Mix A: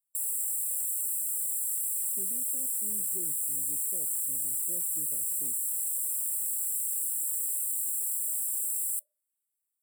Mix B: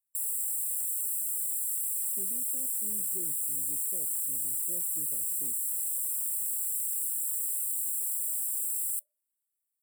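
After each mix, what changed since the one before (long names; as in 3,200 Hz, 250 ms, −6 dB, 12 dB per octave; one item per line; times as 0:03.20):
background −3.5 dB
master: add high-shelf EQ 10,000 Hz +4.5 dB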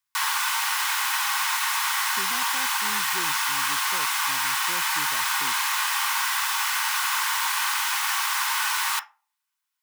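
speech +6.0 dB
master: remove linear-phase brick-wall band-stop 620–7,400 Hz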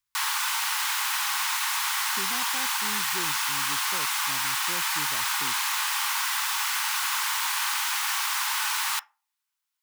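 background: send −9.5 dB
master: remove high-pass filter 130 Hz 6 dB per octave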